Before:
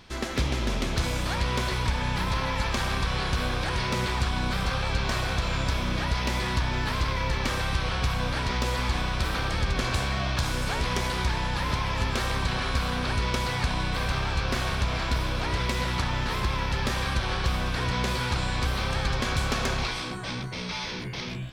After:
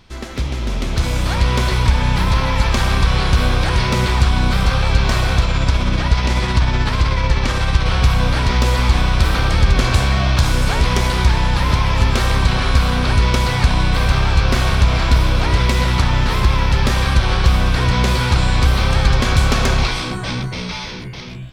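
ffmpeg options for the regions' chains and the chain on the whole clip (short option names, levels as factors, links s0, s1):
-filter_complex "[0:a]asettb=1/sr,asplit=3[s0][s1][s2];[s0]atrim=end=5.444[s3];[s1]atrim=start=5.44:end=7.86,asetpts=PTS-STARTPTS,afade=t=in:d=0.004:c=qsin,afade=t=out:st=2.416:d=0.004:c=qsin,lowpass=9400,tremolo=f=16:d=0.34[s4];[s2]atrim=start=7.856[s5];[s3][s4]acrossfade=d=0.004:c1=hsin:c2=qsin[s6];[s6][s5]acrossfade=d=0.004:c1=qsin:c2=hsin,lowshelf=f=130:g=7,bandreject=f=1700:w=29,dynaudnorm=f=120:g=17:m=3.76"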